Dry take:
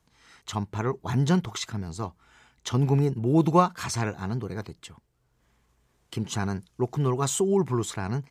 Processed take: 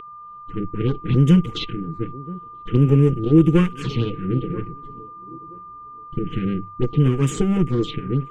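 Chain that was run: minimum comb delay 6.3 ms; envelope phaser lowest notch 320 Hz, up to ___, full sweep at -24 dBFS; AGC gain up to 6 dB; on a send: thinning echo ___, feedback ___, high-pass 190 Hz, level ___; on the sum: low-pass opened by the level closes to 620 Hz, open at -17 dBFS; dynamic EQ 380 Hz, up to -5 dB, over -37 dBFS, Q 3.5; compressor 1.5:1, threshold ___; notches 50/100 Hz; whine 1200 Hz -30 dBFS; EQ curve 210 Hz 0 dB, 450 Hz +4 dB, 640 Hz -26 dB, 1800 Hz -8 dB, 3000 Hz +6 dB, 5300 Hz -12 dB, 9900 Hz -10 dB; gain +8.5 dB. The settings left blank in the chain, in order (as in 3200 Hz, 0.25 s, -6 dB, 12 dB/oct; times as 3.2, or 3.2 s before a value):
4100 Hz, 0.98 s, 28%, -22 dB, -28 dBFS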